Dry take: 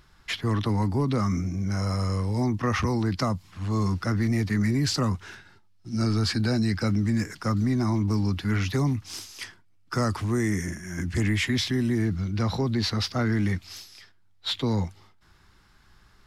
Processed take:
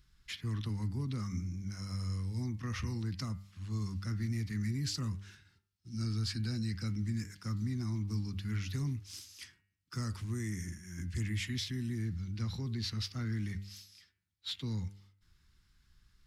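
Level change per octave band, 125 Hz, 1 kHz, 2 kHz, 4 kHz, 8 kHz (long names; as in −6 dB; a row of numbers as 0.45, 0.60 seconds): −9.0, −19.5, −14.0, −10.0, −9.0 decibels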